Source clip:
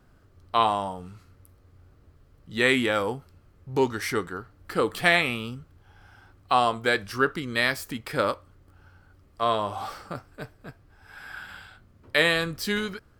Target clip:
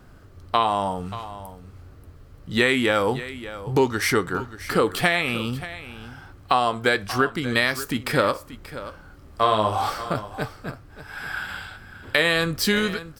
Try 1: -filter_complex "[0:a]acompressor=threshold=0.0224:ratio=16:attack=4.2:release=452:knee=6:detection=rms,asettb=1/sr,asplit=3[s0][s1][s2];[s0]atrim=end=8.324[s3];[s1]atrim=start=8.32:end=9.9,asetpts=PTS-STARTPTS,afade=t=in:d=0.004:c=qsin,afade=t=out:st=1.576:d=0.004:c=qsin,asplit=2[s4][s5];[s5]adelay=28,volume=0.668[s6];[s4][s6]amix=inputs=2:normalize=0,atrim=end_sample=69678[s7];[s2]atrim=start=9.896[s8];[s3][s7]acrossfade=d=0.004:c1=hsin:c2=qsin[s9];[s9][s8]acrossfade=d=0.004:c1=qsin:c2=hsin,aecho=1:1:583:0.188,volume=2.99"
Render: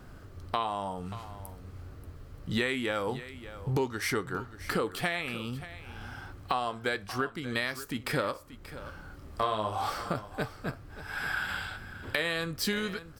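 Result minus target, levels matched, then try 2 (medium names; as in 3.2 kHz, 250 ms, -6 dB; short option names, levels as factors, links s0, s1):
compression: peak gain reduction +11 dB
-filter_complex "[0:a]acompressor=threshold=0.0841:ratio=16:attack=4.2:release=452:knee=6:detection=rms,asettb=1/sr,asplit=3[s0][s1][s2];[s0]atrim=end=8.324[s3];[s1]atrim=start=8.32:end=9.9,asetpts=PTS-STARTPTS,afade=t=in:d=0.004:c=qsin,afade=t=out:st=1.576:d=0.004:c=qsin,asplit=2[s4][s5];[s5]adelay=28,volume=0.668[s6];[s4][s6]amix=inputs=2:normalize=0,atrim=end_sample=69678[s7];[s2]atrim=start=9.896[s8];[s3][s7]acrossfade=d=0.004:c1=hsin:c2=qsin[s9];[s9][s8]acrossfade=d=0.004:c1=qsin:c2=hsin,aecho=1:1:583:0.188,volume=2.99"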